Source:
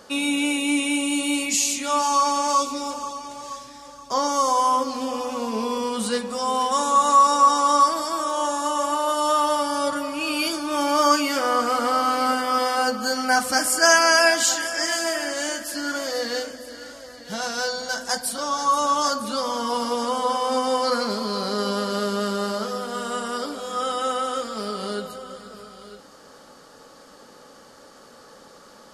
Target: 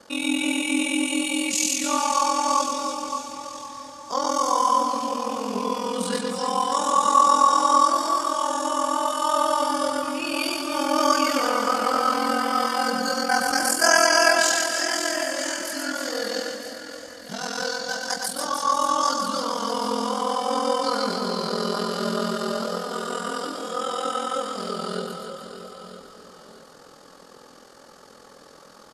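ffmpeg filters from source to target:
-af "aeval=exprs='val(0)*sin(2*PI*21*n/s)':c=same,aecho=1:1:120|300|570|975|1582:0.631|0.398|0.251|0.158|0.1"

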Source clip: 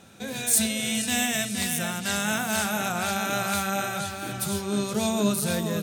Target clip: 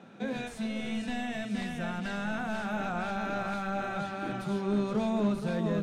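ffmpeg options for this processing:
-filter_complex "[0:a]asplit=2[s0][s1];[s1]aeval=exprs='(mod(7.94*val(0)+1,2)-1)/7.94':c=same,volume=0.282[s2];[s0][s2]amix=inputs=2:normalize=0,highpass=f=170:w=0.5412,highpass=f=170:w=1.3066,lowshelf=f=390:g=-9,acompressor=threshold=0.0355:ratio=3,asoftclip=type=hard:threshold=0.0531,lowpass=f=2500:p=1,aemphasis=mode=reproduction:type=riaa"

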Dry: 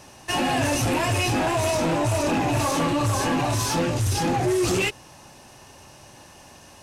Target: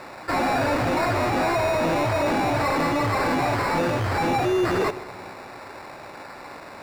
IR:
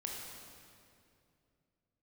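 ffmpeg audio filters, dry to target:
-filter_complex "[0:a]acrusher=samples=14:mix=1:aa=0.000001,asplit=2[s0][s1];[s1]highpass=f=720:p=1,volume=7.94,asoftclip=type=tanh:threshold=0.141[s2];[s0][s2]amix=inputs=2:normalize=0,lowpass=f=2300:p=1,volume=0.501,asplit=2[s3][s4];[1:a]atrim=start_sample=2205,adelay=76[s5];[s4][s5]afir=irnorm=-1:irlink=0,volume=0.158[s6];[s3][s6]amix=inputs=2:normalize=0"

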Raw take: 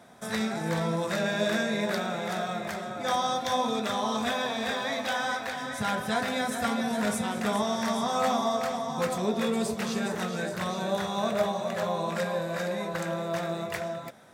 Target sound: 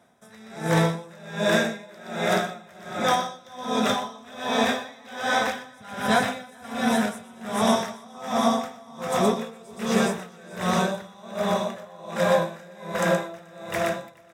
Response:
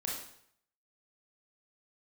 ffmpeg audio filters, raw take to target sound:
-filter_complex "[0:a]bandreject=f=4400:w=6.7,asplit=2[s0][s1];[s1]aecho=0:1:431|862|1293|1724|2155|2586|3017|3448:0.447|0.268|0.161|0.0965|0.0579|0.0347|0.0208|0.0125[s2];[s0][s2]amix=inputs=2:normalize=0,dynaudnorm=f=140:g=3:m=5.96,asplit=2[s3][s4];[s4]aecho=0:1:122:0.531[s5];[s3][s5]amix=inputs=2:normalize=0,aeval=exprs='val(0)*pow(10,-26*(0.5-0.5*cos(2*PI*1.3*n/s))/20)':c=same,volume=0.473"

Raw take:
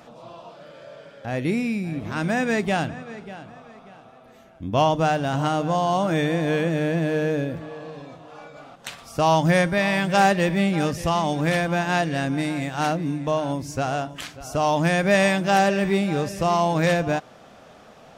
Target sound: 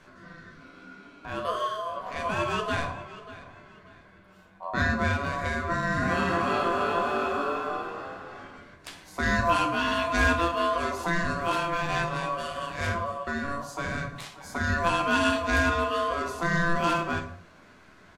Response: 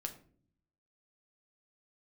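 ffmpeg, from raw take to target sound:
-filter_complex "[0:a]aeval=exprs='val(0)*sin(2*PI*850*n/s)':c=same,asplit=3[s0][s1][s2];[s0]afade=t=out:st=6.01:d=0.02[s3];[s1]asplit=6[s4][s5][s6][s7][s8][s9];[s5]adelay=322,afreqshift=43,volume=0.668[s10];[s6]adelay=644,afreqshift=86,volume=0.282[s11];[s7]adelay=966,afreqshift=129,volume=0.117[s12];[s8]adelay=1288,afreqshift=172,volume=0.0495[s13];[s9]adelay=1610,afreqshift=215,volume=0.0209[s14];[s4][s10][s11][s12][s13][s14]amix=inputs=6:normalize=0,afade=t=in:st=6.01:d=0.02,afade=t=out:st=8.57:d=0.02[s15];[s2]afade=t=in:st=8.57:d=0.02[s16];[s3][s15][s16]amix=inputs=3:normalize=0[s17];[1:a]atrim=start_sample=2205,afade=t=out:st=0.22:d=0.01,atrim=end_sample=10143,asetrate=28665,aresample=44100[s18];[s17][s18]afir=irnorm=-1:irlink=0,volume=0.631"

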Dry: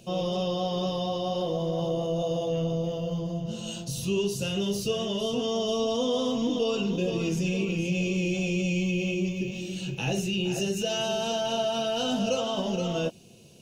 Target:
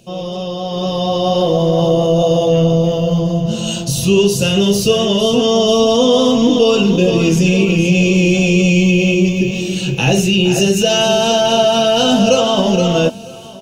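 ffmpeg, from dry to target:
-filter_complex "[0:a]dynaudnorm=f=640:g=3:m=3.76,asplit=2[s0][s1];[s1]aecho=0:1:956|1912|2868|3824:0.0708|0.0425|0.0255|0.0153[s2];[s0][s2]amix=inputs=2:normalize=0,volume=1.58"

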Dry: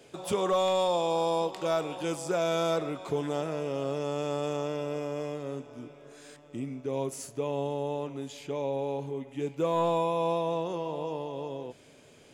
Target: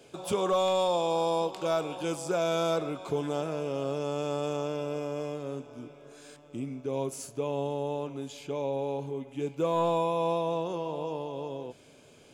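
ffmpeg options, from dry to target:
-af "bandreject=f=1900:w=7.1"

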